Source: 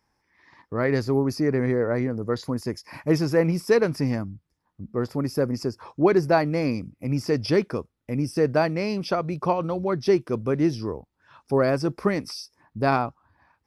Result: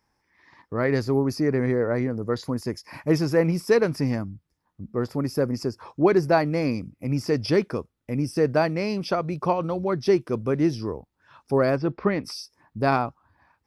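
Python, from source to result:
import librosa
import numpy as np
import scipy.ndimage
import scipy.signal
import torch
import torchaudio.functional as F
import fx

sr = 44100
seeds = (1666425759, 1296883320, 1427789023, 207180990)

y = fx.lowpass(x, sr, hz=3800.0, slope=24, at=(11.75, 12.23), fade=0.02)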